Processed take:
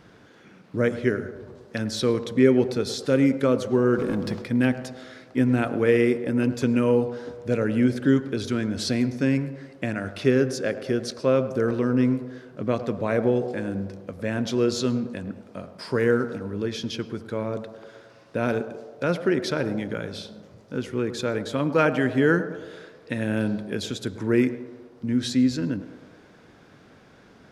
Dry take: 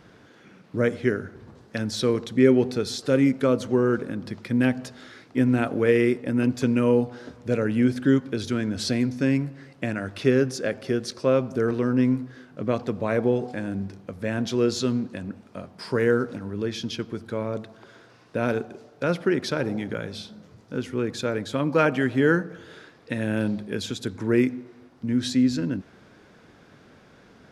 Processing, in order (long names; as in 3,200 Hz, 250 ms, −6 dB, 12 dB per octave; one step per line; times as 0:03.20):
0:03.98–0:04.42: leveller curve on the samples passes 2
feedback echo with a band-pass in the loop 106 ms, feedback 71%, band-pass 610 Hz, level −11.5 dB
on a send at −24 dB: convolution reverb, pre-delay 122 ms